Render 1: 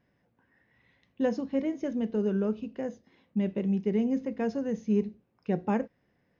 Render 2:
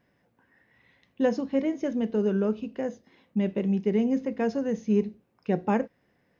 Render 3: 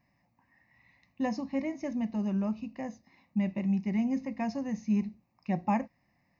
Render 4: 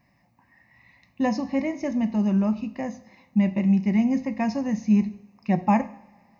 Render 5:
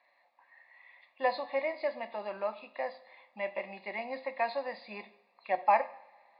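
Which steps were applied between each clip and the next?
bass shelf 200 Hz -5 dB; trim +4.5 dB
static phaser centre 2.2 kHz, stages 8
two-slope reverb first 0.68 s, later 2.3 s, from -18 dB, DRR 12.5 dB; trim +7.5 dB
knee-point frequency compression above 2.7 kHz 1.5:1; Chebyshev band-pass 530–4200 Hz, order 3

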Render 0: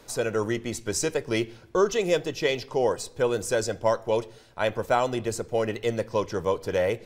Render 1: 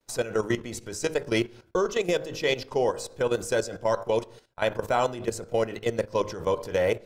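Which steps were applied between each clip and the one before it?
de-hum 52.46 Hz, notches 32; expander -43 dBFS; level held to a coarse grid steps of 13 dB; trim +3.5 dB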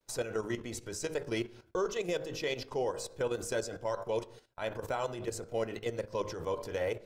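peak limiter -19.5 dBFS, peak gain reduction 8.5 dB; flange 0.98 Hz, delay 1.8 ms, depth 1.3 ms, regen -77%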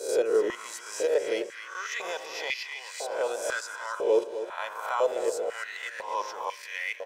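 reverse spectral sustain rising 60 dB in 0.61 s; feedback delay 256 ms, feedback 46%, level -11 dB; step-sequenced high-pass 2 Hz 410–2100 Hz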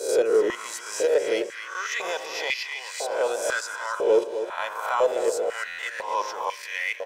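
in parallel at -6 dB: saturation -23.5 dBFS, distortion -11 dB; on the sum: buffer glitch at 5.67 s, samples 512, times 9; trim +1.5 dB

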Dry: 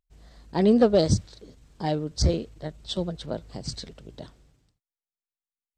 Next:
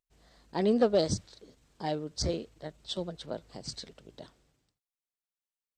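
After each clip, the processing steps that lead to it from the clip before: bass shelf 170 Hz -11 dB; trim -4 dB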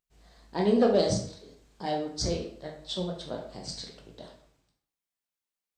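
reverberation RT60 0.60 s, pre-delay 9 ms, DRR 0 dB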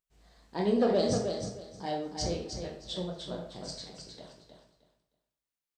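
feedback delay 311 ms, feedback 22%, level -6.5 dB; trim -3.5 dB

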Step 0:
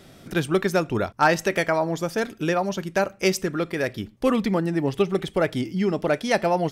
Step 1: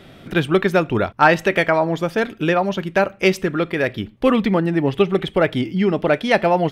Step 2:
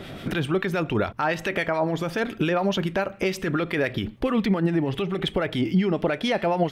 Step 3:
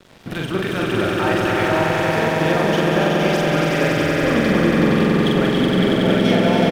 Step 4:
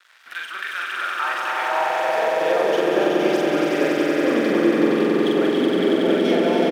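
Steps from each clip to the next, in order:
resonant high shelf 4.3 kHz -8.5 dB, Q 1.5; trim +5 dB
compression, threshold -22 dBFS, peak gain reduction 13.5 dB; peak limiter -20 dBFS, peak gain reduction 9.5 dB; harmonic tremolo 7.1 Hz, depth 50%, crossover 1.2 kHz; trim +8 dB
echo with a slow build-up 93 ms, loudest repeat 5, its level -3.5 dB; crossover distortion -35 dBFS; doubling 44 ms -2 dB
high-pass sweep 1.5 kHz -> 330 Hz, 0.88–3.23 s; trim -5 dB

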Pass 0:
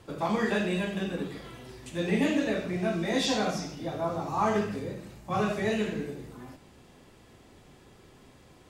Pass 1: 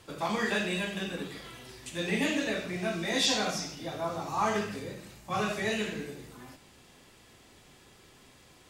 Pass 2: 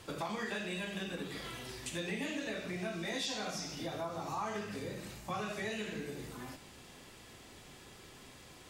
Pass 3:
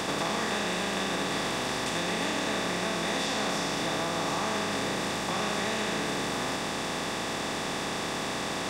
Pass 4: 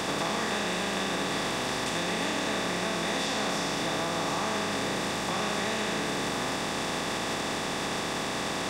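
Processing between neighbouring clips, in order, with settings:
tilt shelf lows -5 dB, about 1.3 kHz
compression 4:1, threshold -40 dBFS, peak gain reduction 14.5 dB; trim +2.5 dB
spectral levelling over time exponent 0.2
recorder AGC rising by 76 dB/s

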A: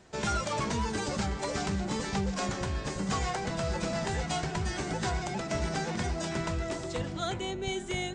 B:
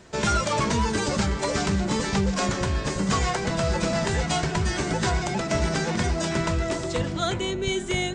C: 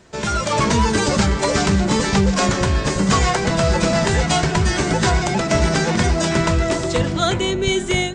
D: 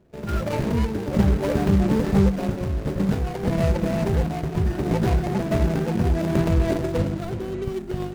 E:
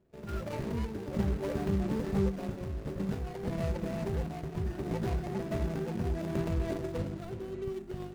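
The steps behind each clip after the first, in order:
band-stop 770 Hz, Q 12; trim +7.5 dB
level rider gain up to 7.5 dB
median filter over 41 samples; random-step tremolo
feedback comb 390 Hz, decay 0.35 s, harmonics odd, mix 60%; trim -4 dB

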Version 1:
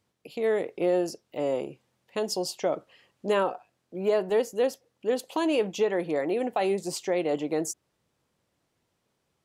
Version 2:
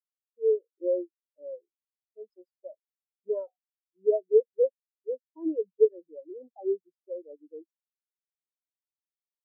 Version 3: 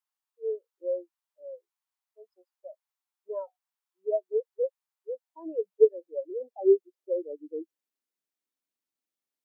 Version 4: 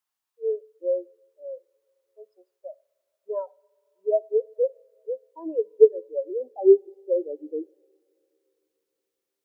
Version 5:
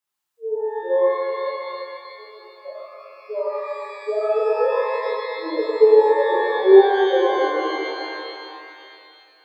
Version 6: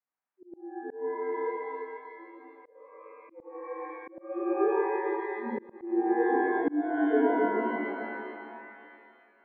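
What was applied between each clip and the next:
spectral contrast expander 4:1; trim +3.5 dB
high-pass sweep 910 Hz -> 250 Hz, 4.88–8.12 s; trim +3 dB
two-slope reverb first 0.49 s, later 3.3 s, from -20 dB, DRR 19.5 dB; trim +5 dB
pitch-shifted reverb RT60 2.6 s, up +12 st, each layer -8 dB, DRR -8.5 dB; trim -3 dB
mistuned SSB -91 Hz 250–2300 Hz; slow attack 451 ms; trim -6 dB

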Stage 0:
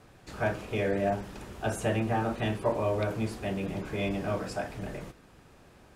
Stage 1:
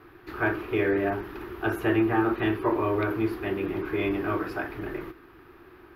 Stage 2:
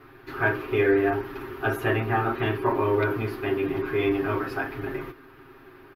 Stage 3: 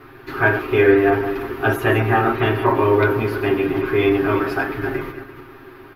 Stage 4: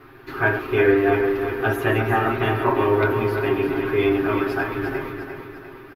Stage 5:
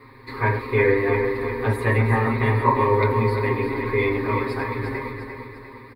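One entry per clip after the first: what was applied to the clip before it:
FFT filter 100 Hz 0 dB, 210 Hz -7 dB, 350 Hz +15 dB, 540 Hz -6 dB, 1.2 kHz +9 dB, 1.8 kHz +7 dB, 4.7 kHz -5 dB, 8.4 kHz -23 dB, 12 kHz +6 dB
comb 7.5 ms, depth 91%
backward echo that repeats 169 ms, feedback 44%, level -10 dB; trim +7 dB
feedback delay 350 ms, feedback 48%, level -8 dB; trim -3.5 dB
rippled EQ curve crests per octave 0.96, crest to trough 18 dB; trim -2.5 dB

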